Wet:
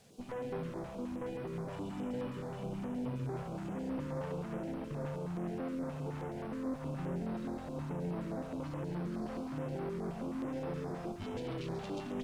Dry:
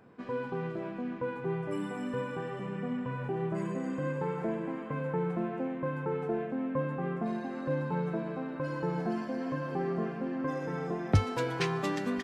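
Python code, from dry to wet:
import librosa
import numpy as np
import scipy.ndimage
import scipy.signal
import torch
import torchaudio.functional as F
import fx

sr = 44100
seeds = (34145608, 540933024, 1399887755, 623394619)

p1 = fx.band_shelf(x, sr, hz=1400.0, db=-15.0, octaves=1.3)
p2 = fx.over_compress(p1, sr, threshold_db=-33.0, ratio=-0.5)
p3 = fx.tube_stage(p2, sr, drive_db=39.0, bias=0.8)
p4 = fx.dmg_noise_colour(p3, sr, seeds[0], colour='blue', level_db=-59.0)
p5 = fx.air_absorb(p4, sr, metres=77.0)
p6 = p5 + fx.echo_single(p5, sr, ms=137, db=-5.0, dry=0)
p7 = fx.filter_held_notch(p6, sr, hz=9.5, low_hz=310.0, high_hz=6900.0)
y = p7 * librosa.db_to_amplitude(2.5)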